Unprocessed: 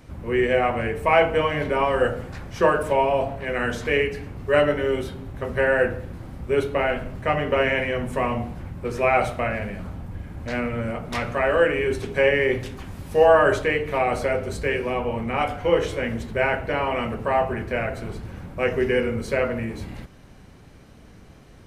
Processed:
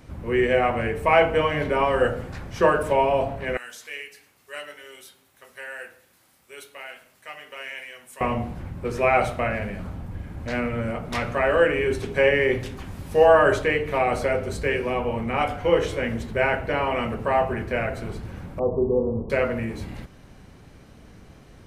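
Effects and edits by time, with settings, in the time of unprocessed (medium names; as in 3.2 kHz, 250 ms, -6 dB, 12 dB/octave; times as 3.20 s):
3.57–8.21 s: differentiator
18.59–19.30 s: steep low-pass 1.1 kHz 96 dB/octave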